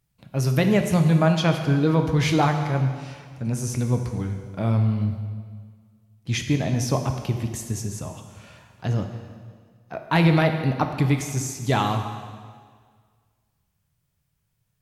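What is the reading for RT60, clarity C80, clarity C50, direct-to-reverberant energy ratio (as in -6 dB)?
1.8 s, 8.0 dB, 7.0 dB, 5.0 dB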